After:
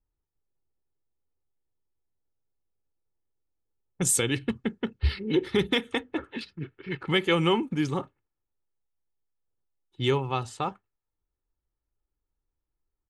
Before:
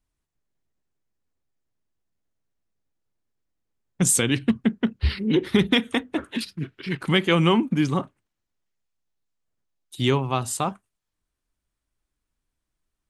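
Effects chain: level-controlled noise filter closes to 1.1 kHz, open at -17 dBFS; comb 2.3 ms, depth 44%; trim -4.5 dB

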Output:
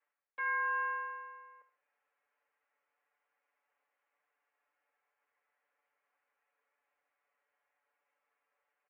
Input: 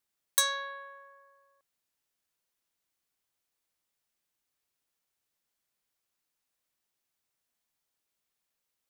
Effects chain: comb filter that takes the minimum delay 3.5 ms; reverse; compression 8:1, threshold -43 dBFS, peak gain reduction 21.5 dB; reverse; mistuned SSB -54 Hz 520–2300 Hz; comb 6.9 ms, depth 97%; feedback delay 74 ms, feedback 32%, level -12 dB; trim +8.5 dB

